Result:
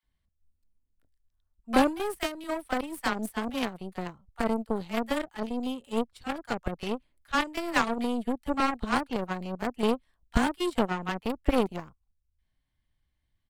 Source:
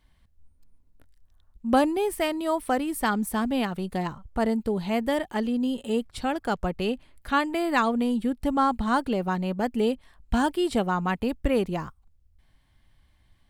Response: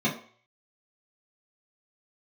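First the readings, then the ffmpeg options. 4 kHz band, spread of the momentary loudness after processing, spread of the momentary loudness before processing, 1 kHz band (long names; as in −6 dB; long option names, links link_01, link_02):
−1.0 dB, 7 LU, 6 LU, −4.0 dB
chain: -filter_complex "[0:a]acrossover=split=870[link_01][link_02];[link_01]adelay=30[link_03];[link_03][link_02]amix=inputs=2:normalize=0,aeval=exprs='0.335*(cos(1*acos(clip(val(0)/0.335,-1,1)))-cos(1*PI/2))+0.0376*(cos(4*acos(clip(val(0)/0.335,-1,1)))-cos(4*PI/2))+0.00376*(cos(5*acos(clip(val(0)/0.335,-1,1)))-cos(5*PI/2))+0.0075*(cos(6*acos(clip(val(0)/0.335,-1,1)))-cos(6*PI/2))+0.0422*(cos(7*acos(clip(val(0)/0.335,-1,1)))-cos(7*PI/2))':channel_layout=same"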